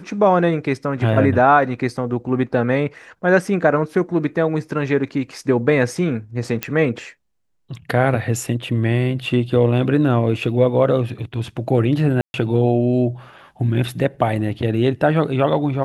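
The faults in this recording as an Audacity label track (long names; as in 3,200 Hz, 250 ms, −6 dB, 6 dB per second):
6.630000	6.630000	click −5 dBFS
12.210000	12.340000	drop-out 131 ms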